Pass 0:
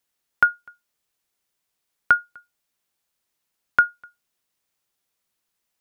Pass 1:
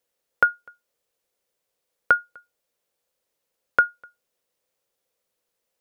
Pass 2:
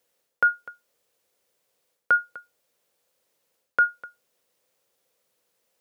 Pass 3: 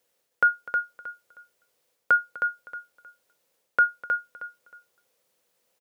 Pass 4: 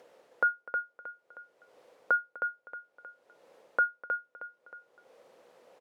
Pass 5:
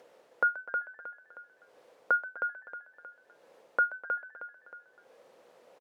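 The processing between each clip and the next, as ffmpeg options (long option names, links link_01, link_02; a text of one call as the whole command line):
ffmpeg -i in.wav -af "equalizer=frequency=510:width_type=o:width=0.6:gain=15,volume=-2dB" out.wav
ffmpeg -i in.wav -af "areverse,acompressor=threshold=-23dB:ratio=12,areverse,highpass=76,volume=6dB" out.wav
ffmpeg -i in.wav -af "aecho=1:1:314|628|942:0.501|0.125|0.0313" out.wav
ffmpeg -i in.wav -af "acompressor=mode=upward:threshold=-33dB:ratio=2.5,bandpass=frequency=560:width_type=q:width=0.84:csg=0" out.wav
ffmpeg -i in.wav -filter_complex "[0:a]asplit=5[link_01][link_02][link_03][link_04][link_05];[link_02]adelay=129,afreqshift=81,volume=-17dB[link_06];[link_03]adelay=258,afreqshift=162,volume=-23.6dB[link_07];[link_04]adelay=387,afreqshift=243,volume=-30.1dB[link_08];[link_05]adelay=516,afreqshift=324,volume=-36.7dB[link_09];[link_01][link_06][link_07][link_08][link_09]amix=inputs=5:normalize=0" out.wav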